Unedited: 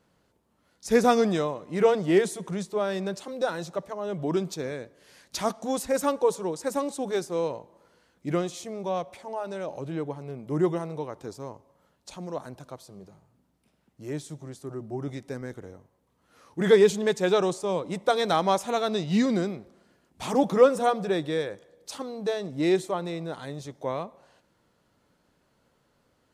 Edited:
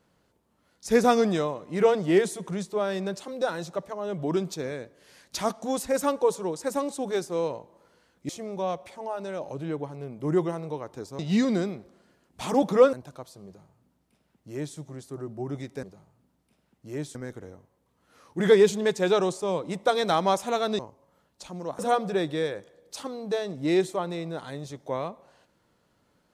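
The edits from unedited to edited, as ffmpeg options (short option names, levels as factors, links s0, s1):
-filter_complex "[0:a]asplit=8[s0][s1][s2][s3][s4][s5][s6][s7];[s0]atrim=end=8.292[s8];[s1]atrim=start=8.558:end=11.462[s9];[s2]atrim=start=18.998:end=20.742[s10];[s3]atrim=start=12.458:end=15.362[s11];[s4]atrim=start=12.978:end=14.302[s12];[s5]atrim=start=15.358:end=19.002[s13];[s6]atrim=start=11.458:end=12.462[s14];[s7]atrim=start=20.738[s15];[s8][s9]acrossfade=d=0.004:c1=hsin:c2=hsin[s16];[s16][s10]acrossfade=d=0.004:c1=hsin:c2=hsin[s17];[s17][s11]acrossfade=d=0.004:c1=hsin:c2=hsin[s18];[s18][s12]acrossfade=d=0.004:c1=hsin:c2=hsin[s19];[s19][s13]acrossfade=d=0.004:c1=hsin:c2=hsin[s20];[s20][s14]acrossfade=d=0.004:c1=hsin:c2=hsin[s21];[s21][s15]acrossfade=d=0.004:c1=hsin:c2=hsin"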